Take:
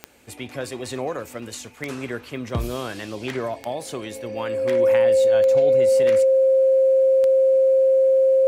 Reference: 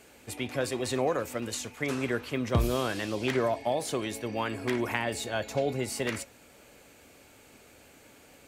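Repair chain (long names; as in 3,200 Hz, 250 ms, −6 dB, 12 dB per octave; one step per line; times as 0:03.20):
click removal
notch filter 530 Hz, Q 30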